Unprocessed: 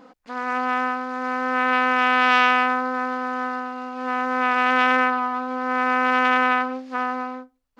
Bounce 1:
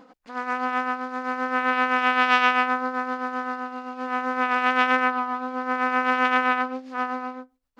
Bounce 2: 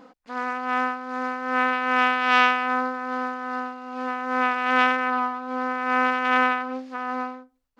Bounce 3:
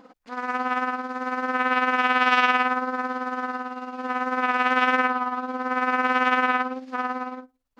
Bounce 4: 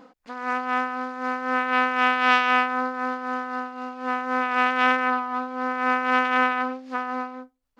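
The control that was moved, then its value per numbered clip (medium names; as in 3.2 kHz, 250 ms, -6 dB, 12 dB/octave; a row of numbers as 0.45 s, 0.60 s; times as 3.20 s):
tremolo, rate: 7.7 Hz, 2.5 Hz, 18 Hz, 3.9 Hz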